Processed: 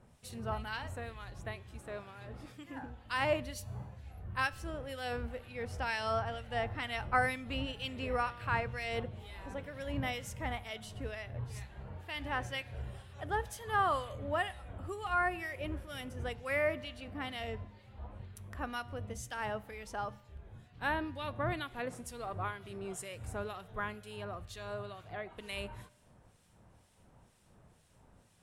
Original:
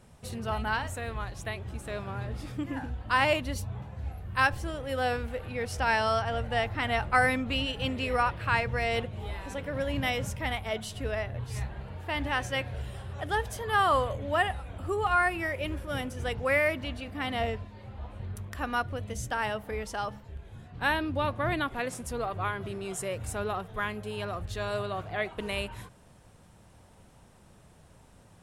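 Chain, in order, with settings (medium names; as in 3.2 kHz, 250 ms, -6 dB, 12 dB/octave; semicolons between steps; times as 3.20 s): 1.80–3.03 s: bass shelf 170 Hz -10 dB; 24.12–25.44 s: compression, threshold -32 dBFS, peak gain reduction 7 dB; harmonic tremolo 2.1 Hz, crossover 1.9 kHz; feedback comb 120 Hz, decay 1 s, harmonics all, mix 40%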